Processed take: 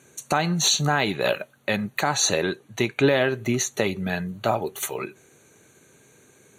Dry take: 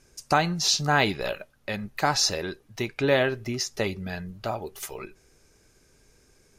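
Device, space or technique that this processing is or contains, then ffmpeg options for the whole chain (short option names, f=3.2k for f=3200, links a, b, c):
PA system with an anti-feedback notch: -filter_complex "[0:a]asettb=1/sr,asplit=3[a][b][c];[a]atrim=end=2.014[d];[b]atrim=start=2.01:end=2.92,asetpts=PTS-STARTPTS,afade=t=in:d=0.004:c=qsin,afade=t=out:st=0.906:d=0.004:c=qsin,lowpass=12k[e];[c]atrim=start=2.916[f];[d][e]acrossfade=d=0.004:c1=hsin:c2=qsin[g];[g][f]acrossfade=d=0.004:c1=qsin:c2=hsin,highpass=f=110:w=0.5412,highpass=f=110:w=1.3066,asuperstop=centerf=5100:order=12:qfactor=4.1,alimiter=limit=-16dB:level=0:latency=1:release=224,volume=7.5dB"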